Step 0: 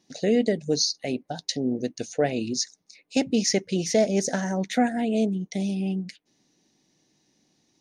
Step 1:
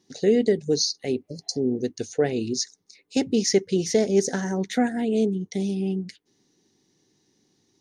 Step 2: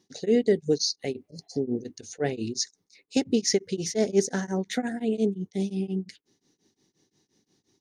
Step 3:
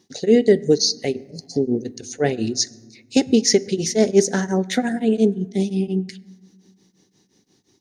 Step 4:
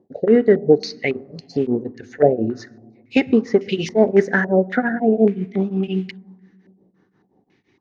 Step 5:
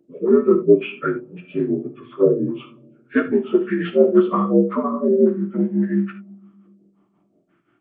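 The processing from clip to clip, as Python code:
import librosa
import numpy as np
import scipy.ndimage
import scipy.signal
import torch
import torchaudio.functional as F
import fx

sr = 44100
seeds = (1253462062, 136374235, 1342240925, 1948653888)

y1 = fx.graphic_eq_31(x, sr, hz=(100, 400, 630, 2500), db=(7, 8, -9, -5))
y1 = fx.spec_repair(y1, sr, seeds[0], start_s=1.26, length_s=0.29, low_hz=610.0, high_hz=4100.0, source='both')
y2 = y1 * np.abs(np.cos(np.pi * 5.7 * np.arange(len(y1)) / sr))
y3 = fx.rev_fdn(y2, sr, rt60_s=1.3, lf_ratio=1.6, hf_ratio=0.55, size_ms=79.0, drr_db=17.5)
y3 = y3 * librosa.db_to_amplitude(7.5)
y4 = fx.mod_noise(y3, sr, seeds[1], snr_db=31)
y4 = fx.filter_held_lowpass(y4, sr, hz=3.6, low_hz=600.0, high_hz=2800.0)
y5 = fx.partial_stretch(y4, sr, pct=80)
y5 = fx.rev_gated(y5, sr, seeds[2], gate_ms=100, shape='flat', drr_db=8.0)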